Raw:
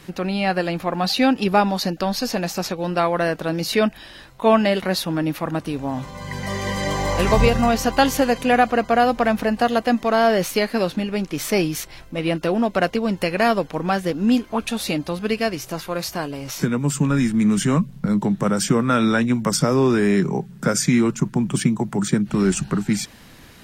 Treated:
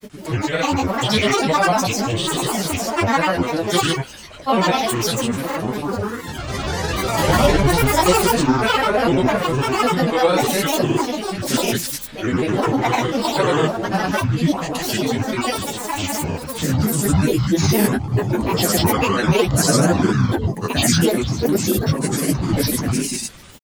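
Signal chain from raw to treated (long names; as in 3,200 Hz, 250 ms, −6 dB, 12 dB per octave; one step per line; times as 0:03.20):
high-shelf EQ 5,300 Hz +8 dB
reverb whose tail is shaped and stops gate 210 ms flat, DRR −7.5 dB
granular cloud, pitch spread up and down by 12 semitones
level −5.5 dB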